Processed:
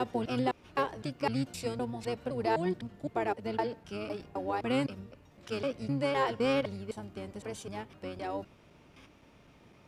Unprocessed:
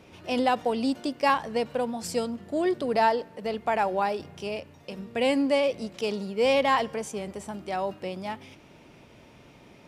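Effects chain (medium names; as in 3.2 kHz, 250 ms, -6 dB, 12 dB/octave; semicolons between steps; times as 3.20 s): slices played last to first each 256 ms, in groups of 3; harmony voices -12 st -3 dB; trim -8 dB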